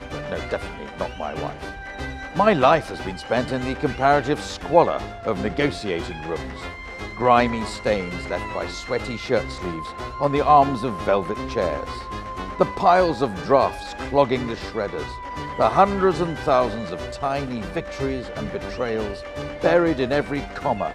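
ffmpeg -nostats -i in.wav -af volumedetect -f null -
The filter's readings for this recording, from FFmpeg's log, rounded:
mean_volume: -22.6 dB
max_volume: -1.8 dB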